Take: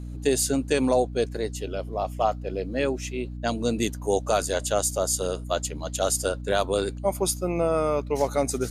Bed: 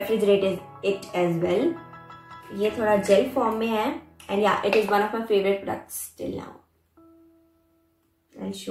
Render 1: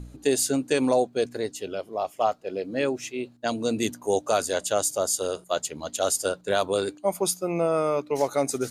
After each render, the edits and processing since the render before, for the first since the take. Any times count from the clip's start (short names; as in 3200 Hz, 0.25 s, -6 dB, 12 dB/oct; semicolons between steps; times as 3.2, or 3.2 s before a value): de-hum 60 Hz, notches 5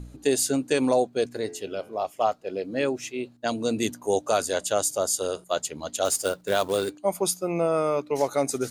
1.31–2.01 de-hum 86.3 Hz, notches 34; 6.05–6.9 short-mantissa float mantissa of 2-bit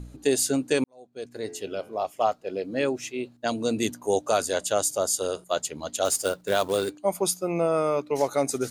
0.84–1.55 fade in quadratic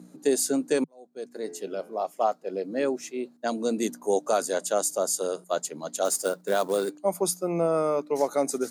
elliptic high-pass 160 Hz, stop band 40 dB; bell 2900 Hz -8 dB 0.91 oct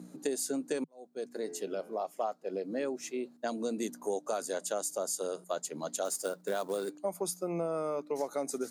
compressor 3:1, threshold -33 dBFS, peak gain reduction 11.5 dB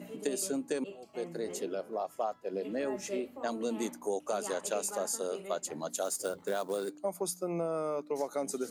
add bed -22 dB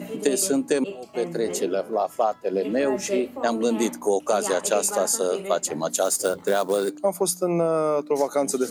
gain +11.5 dB